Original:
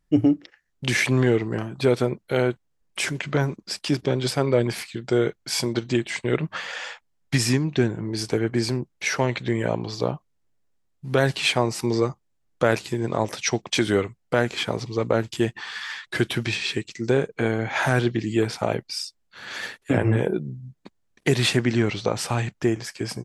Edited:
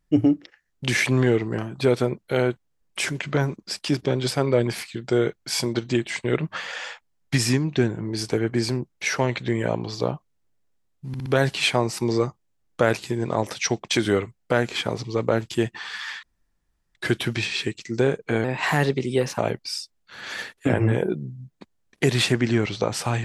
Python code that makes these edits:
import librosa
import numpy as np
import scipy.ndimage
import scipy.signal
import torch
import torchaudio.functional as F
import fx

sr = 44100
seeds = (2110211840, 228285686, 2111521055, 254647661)

y = fx.edit(x, sr, fx.stutter(start_s=11.08, slice_s=0.06, count=4),
    fx.insert_room_tone(at_s=16.05, length_s=0.72),
    fx.speed_span(start_s=17.54, length_s=1.09, speed=1.15), tone=tone)